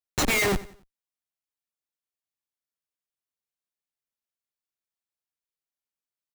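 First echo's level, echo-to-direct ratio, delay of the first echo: −18.0 dB, −17.5 dB, 91 ms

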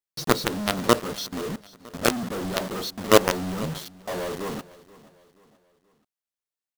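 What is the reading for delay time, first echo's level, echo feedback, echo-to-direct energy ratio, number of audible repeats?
479 ms, −20.0 dB, 43%, −19.0 dB, 3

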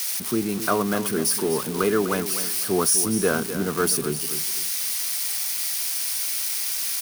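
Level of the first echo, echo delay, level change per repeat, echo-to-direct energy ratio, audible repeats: −11.0 dB, 251 ms, −11.0 dB, −10.5 dB, 3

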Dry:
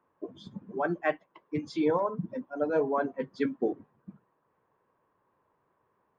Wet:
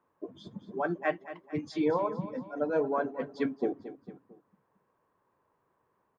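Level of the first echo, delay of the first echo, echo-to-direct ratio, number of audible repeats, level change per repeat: −14.0 dB, 225 ms, −13.0 dB, 3, −6.5 dB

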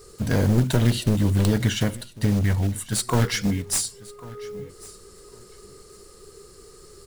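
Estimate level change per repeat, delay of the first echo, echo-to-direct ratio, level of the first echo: −14.5 dB, 1,097 ms, −20.5 dB, −20.5 dB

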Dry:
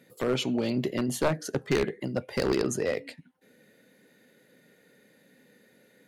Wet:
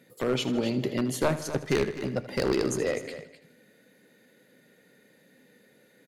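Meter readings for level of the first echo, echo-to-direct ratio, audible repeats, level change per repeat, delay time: −14.5 dB, −10.0 dB, 5, repeats not evenly spaced, 79 ms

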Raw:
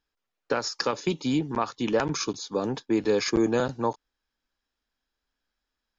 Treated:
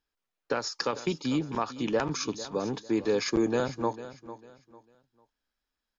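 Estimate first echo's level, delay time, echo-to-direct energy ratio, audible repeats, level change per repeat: −14.5 dB, 449 ms, −14.0 dB, 2, −10.5 dB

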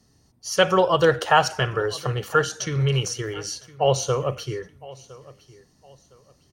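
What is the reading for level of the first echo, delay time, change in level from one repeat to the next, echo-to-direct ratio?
−20.5 dB, 1,011 ms, −10.5 dB, −20.0 dB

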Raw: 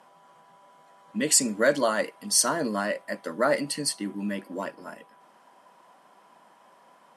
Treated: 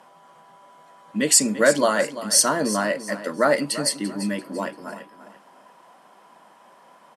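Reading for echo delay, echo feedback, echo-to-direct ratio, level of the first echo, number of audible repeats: 341 ms, 32%, −13.0 dB, −13.5 dB, 3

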